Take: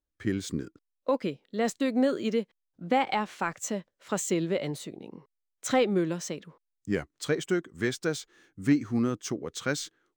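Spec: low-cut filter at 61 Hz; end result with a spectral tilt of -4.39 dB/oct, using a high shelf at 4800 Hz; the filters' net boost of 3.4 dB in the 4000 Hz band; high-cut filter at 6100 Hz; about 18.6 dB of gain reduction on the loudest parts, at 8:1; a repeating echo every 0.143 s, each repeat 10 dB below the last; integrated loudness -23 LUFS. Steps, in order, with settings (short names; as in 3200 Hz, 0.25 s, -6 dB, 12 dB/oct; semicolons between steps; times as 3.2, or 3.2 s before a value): HPF 61 Hz; LPF 6100 Hz; bell 4000 Hz +8 dB; high shelf 4800 Hz -6.5 dB; compressor 8:1, threshold -38 dBFS; feedback echo 0.143 s, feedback 32%, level -10 dB; gain +20 dB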